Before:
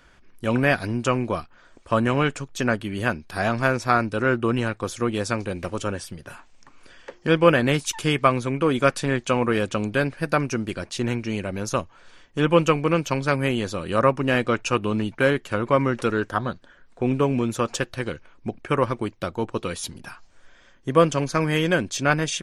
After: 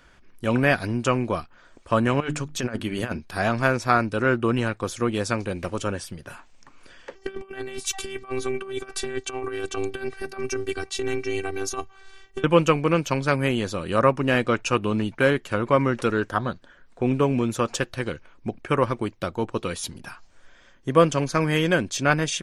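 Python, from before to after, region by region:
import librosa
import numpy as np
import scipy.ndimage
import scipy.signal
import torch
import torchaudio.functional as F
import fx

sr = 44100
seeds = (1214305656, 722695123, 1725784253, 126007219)

y = fx.chain(x, sr, fx.hum_notches(base_hz=50, count=7),
    fx.over_compress(threshold_db=-26.0, ratio=-0.5), at=(2.2, 3.2))
y = fx.chain(y, sr, fx.over_compress(threshold_db=-25.0, ratio=-0.5),
    fx.robotise(hz=388.0), at=(7.15, 12.44))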